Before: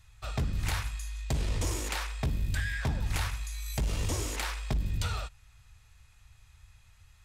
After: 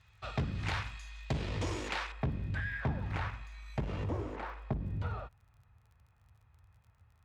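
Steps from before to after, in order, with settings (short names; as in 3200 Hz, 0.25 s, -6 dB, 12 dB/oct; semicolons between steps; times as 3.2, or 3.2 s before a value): LPF 3600 Hz 12 dB/oct, from 2.12 s 1800 Hz, from 4.04 s 1100 Hz; crackle 32/s -55 dBFS; HPF 92 Hz 12 dB/oct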